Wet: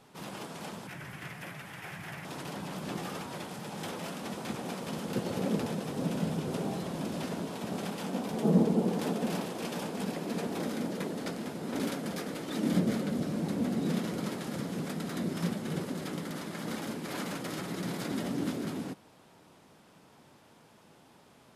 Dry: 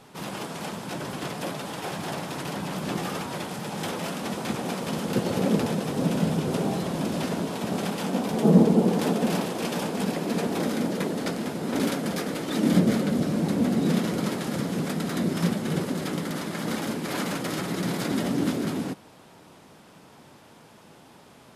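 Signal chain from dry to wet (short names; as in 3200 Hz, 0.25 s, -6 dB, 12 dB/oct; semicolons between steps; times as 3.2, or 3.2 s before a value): 0.87–2.25 graphic EQ 125/250/500/1000/2000/4000/8000 Hz +4/-8/-8/-5/+9/-8/-5 dB; gain -7.5 dB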